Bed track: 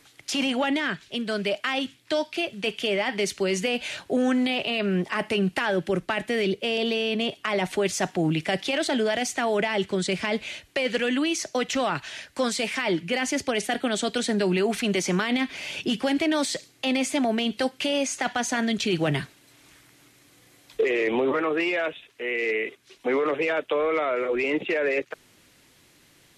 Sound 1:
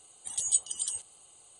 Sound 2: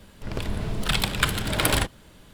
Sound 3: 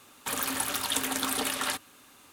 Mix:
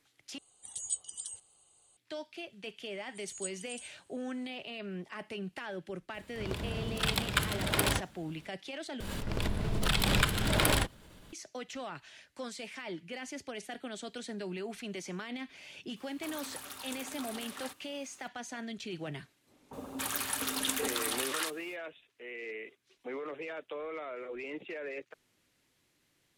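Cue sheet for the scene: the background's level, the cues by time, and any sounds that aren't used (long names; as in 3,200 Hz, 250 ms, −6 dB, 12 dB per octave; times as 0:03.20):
bed track −16 dB
0:00.38: overwrite with 1 −9 dB + low-shelf EQ 160 Hz +3.5 dB
0:02.90: mix in 1 −14.5 dB
0:06.14: mix in 2 −6.5 dB + high-pass filter 52 Hz
0:09.00: overwrite with 2 −6 dB + background raised ahead of every attack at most 22 dB per second
0:15.96: mix in 3 −15.5 dB + mu-law and A-law mismatch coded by mu
0:19.45: mix in 3 −3.5 dB, fades 0.05 s + multiband delay without the direct sound lows, highs 280 ms, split 810 Hz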